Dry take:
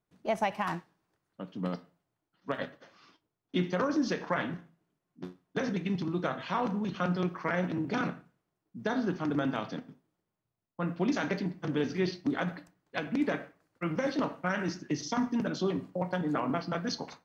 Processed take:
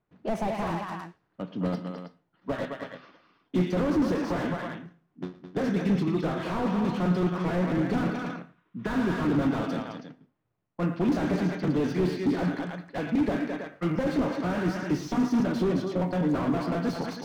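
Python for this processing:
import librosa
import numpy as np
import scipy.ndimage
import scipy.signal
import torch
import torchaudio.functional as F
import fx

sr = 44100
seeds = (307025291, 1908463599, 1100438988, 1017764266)

p1 = fx.env_lowpass(x, sr, base_hz=2400.0, full_db=-29.5)
p2 = fx.spec_box(p1, sr, start_s=8.25, length_s=1.02, low_hz=910.0, high_hz=4000.0, gain_db=11)
p3 = p2 + fx.echo_multitap(p2, sr, ms=(112, 213, 322), db=(-17.0, -9.5, -13.0), dry=0)
p4 = fx.slew_limit(p3, sr, full_power_hz=15.0)
y = F.gain(torch.from_numpy(p4), 6.0).numpy()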